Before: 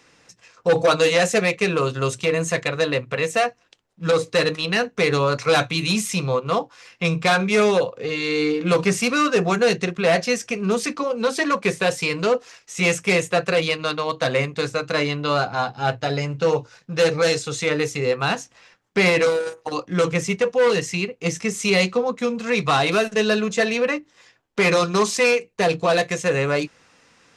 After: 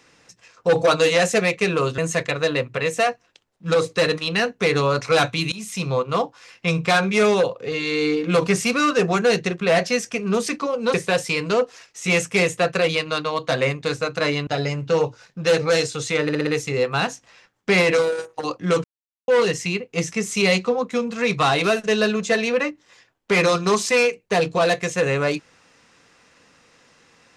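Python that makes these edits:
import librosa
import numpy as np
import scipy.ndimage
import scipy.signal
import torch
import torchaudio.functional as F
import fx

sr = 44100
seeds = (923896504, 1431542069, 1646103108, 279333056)

y = fx.edit(x, sr, fx.cut(start_s=1.98, length_s=0.37),
    fx.fade_in_from(start_s=5.89, length_s=0.39, floor_db=-22.5),
    fx.cut(start_s=11.31, length_s=0.36),
    fx.cut(start_s=15.2, length_s=0.79),
    fx.stutter(start_s=17.75, slice_s=0.06, count=5),
    fx.silence(start_s=20.12, length_s=0.44), tone=tone)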